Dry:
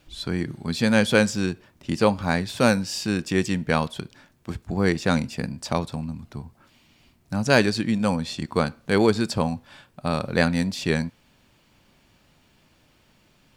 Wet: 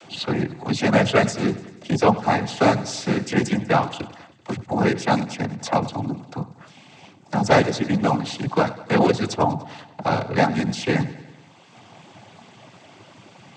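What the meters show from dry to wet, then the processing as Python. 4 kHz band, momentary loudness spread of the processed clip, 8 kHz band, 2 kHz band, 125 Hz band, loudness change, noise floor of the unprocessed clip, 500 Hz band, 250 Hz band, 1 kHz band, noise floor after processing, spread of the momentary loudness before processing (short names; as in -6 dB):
0.0 dB, 14 LU, 0.0 dB, 0.0 dB, +2.0 dB, +2.0 dB, -61 dBFS, +2.5 dB, +1.0 dB, +7.0 dB, -50 dBFS, 14 LU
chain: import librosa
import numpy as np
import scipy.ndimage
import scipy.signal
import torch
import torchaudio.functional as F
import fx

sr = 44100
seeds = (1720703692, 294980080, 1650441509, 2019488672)

p1 = fx.octave_divider(x, sr, octaves=2, level_db=3.0)
p2 = fx.dereverb_blind(p1, sr, rt60_s=0.55)
p3 = fx.peak_eq(p2, sr, hz=760.0, db=10.5, octaves=0.48)
p4 = fx.notch(p3, sr, hz=4500.0, q=24.0)
p5 = fx.noise_vocoder(p4, sr, seeds[0], bands=16)
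p6 = p5 + fx.echo_feedback(p5, sr, ms=97, feedback_pct=52, wet_db=-17.0, dry=0)
p7 = fx.band_squash(p6, sr, depth_pct=40)
y = F.gain(torch.from_numpy(p7), 2.0).numpy()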